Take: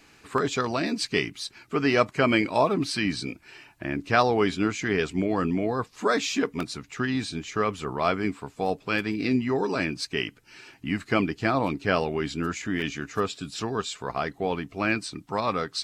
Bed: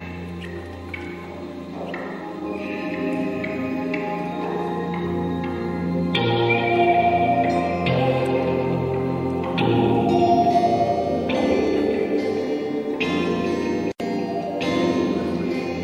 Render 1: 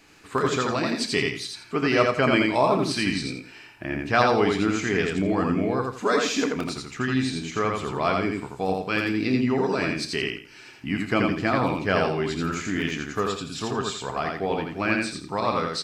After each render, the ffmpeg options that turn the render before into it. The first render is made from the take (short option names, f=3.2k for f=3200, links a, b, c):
-filter_complex "[0:a]asplit=2[a][b];[b]adelay=31,volume=-12dB[c];[a][c]amix=inputs=2:normalize=0,asplit=2[d][e];[e]aecho=0:1:84|168|252|336:0.708|0.191|0.0516|0.0139[f];[d][f]amix=inputs=2:normalize=0"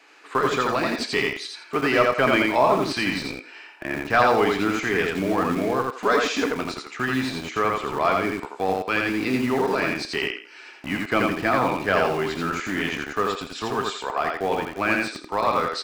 -filter_complex "[0:a]asplit=2[a][b];[b]highpass=f=720:p=1,volume=11dB,asoftclip=type=tanh:threshold=-5.5dB[c];[a][c]amix=inputs=2:normalize=0,lowpass=f=2k:p=1,volume=-6dB,acrossover=split=270|2500[d][e][f];[d]acrusher=bits=5:mix=0:aa=0.000001[g];[g][e][f]amix=inputs=3:normalize=0"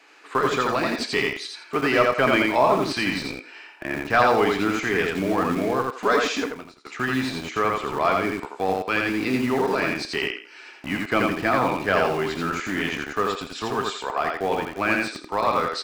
-filter_complex "[0:a]asplit=2[a][b];[a]atrim=end=6.85,asetpts=PTS-STARTPTS,afade=t=out:st=6.34:d=0.51:c=qua:silence=0.0749894[c];[b]atrim=start=6.85,asetpts=PTS-STARTPTS,afade=t=in:d=0.004:c=hsin:silence=0.0749894[d];[c][d]concat=n=2:v=0:a=1"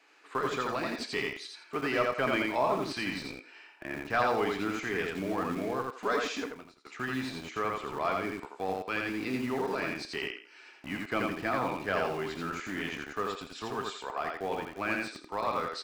-af "volume=-9.5dB"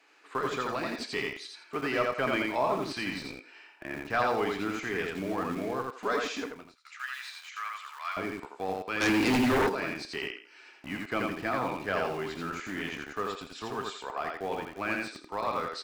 -filter_complex "[0:a]asettb=1/sr,asplit=3[a][b][c];[a]atrim=end=6.754[d];[b]atrim=start=6.75:end=8.17,asetpts=PTS-STARTPTS,afade=t=in:d=0.004:c=qsin,afade=t=out:st=1.416:d=0.004:c=qsin,highpass=f=1.2k:w=0.5412,highpass=f=1.2k:w=1.3066[e];[c]atrim=start=8.166[f];[d][e]acrossfade=d=0.004:c1=hsin:c2=qsin[g];[g][f]acrossfade=d=0.004:c1=qsin:c2=hsin,asplit=3[h][i][j];[h]afade=t=out:st=9:d=0.02[k];[i]aeval=exprs='0.0891*sin(PI/2*2.82*val(0)/0.0891)':c=same,afade=t=in:st=9:d=0.02,afade=t=out:st=9.68:d=0.02[l];[j]afade=t=in:st=9.68:d=0.02[m];[k][l][m]amix=inputs=3:normalize=0"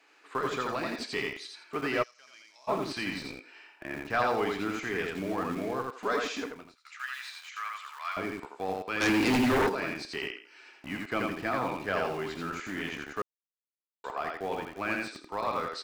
-filter_complex "[0:a]asplit=3[a][b][c];[a]afade=t=out:st=2.02:d=0.02[d];[b]bandpass=f=5.7k:t=q:w=5.5,afade=t=in:st=2.02:d=0.02,afade=t=out:st=2.67:d=0.02[e];[c]afade=t=in:st=2.67:d=0.02[f];[d][e][f]amix=inputs=3:normalize=0,asplit=3[g][h][i];[g]atrim=end=13.22,asetpts=PTS-STARTPTS,afade=t=out:st=13.216:d=0.004:c=hsin[j];[h]atrim=start=13.22:end=14.04,asetpts=PTS-STARTPTS,volume=0[k];[i]atrim=start=14.04,asetpts=PTS-STARTPTS,afade=t=in:d=0.004:c=hsin[l];[j][k][l]concat=n=3:v=0:a=1"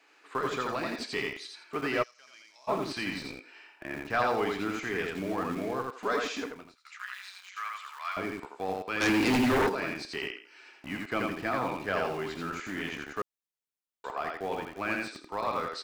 -filter_complex "[0:a]asplit=3[a][b][c];[a]afade=t=out:st=6.97:d=0.02[d];[b]tremolo=f=190:d=0.788,afade=t=in:st=6.97:d=0.02,afade=t=out:st=7.56:d=0.02[e];[c]afade=t=in:st=7.56:d=0.02[f];[d][e][f]amix=inputs=3:normalize=0"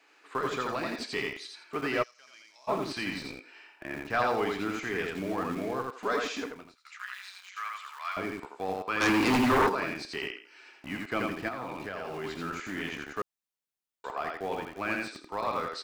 -filter_complex "[0:a]asettb=1/sr,asplit=3[a][b][c];[a]atrim=end=8.784[d];[b]atrim=start=8.78:end=9.84,asetpts=PTS-STARTPTS,afade=t=in:d=0.004:c=qsin,afade=t=out:st=1.056:d=0.004:c=qsin,equalizer=f=1.1k:w=2.5:g=7.5[e];[c]atrim=start=9.836[f];[d][e]acrossfade=d=0.004:c1=hsin:c2=qsin[g];[g][f]acrossfade=d=0.004:c1=qsin:c2=hsin,asettb=1/sr,asplit=3[h][i][j];[h]atrim=end=11.484[k];[i]atrim=start=11.48:end=12.24,asetpts=PTS-STARTPTS,afade=t=in:d=0.004:c=qsin,afade=t=out:st=0.756:d=0.004:c=qsin,acompressor=threshold=-32dB:ratio=12:attack=3.2:release=140:knee=1:detection=peak[l];[j]atrim=start=12.236[m];[k][l]acrossfade=d=0.004:c1=hsin:c2=qsin[n];[n][m]acrossfade=d=0.004:c1=qsin:c2=hsin"